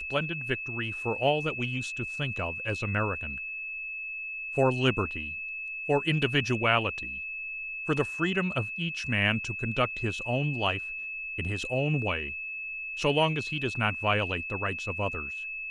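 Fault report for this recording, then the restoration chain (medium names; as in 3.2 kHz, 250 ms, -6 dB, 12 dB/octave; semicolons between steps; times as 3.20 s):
whine 2.6 kHz -34 dBFS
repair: band-stop 2.6 kHz, Q 30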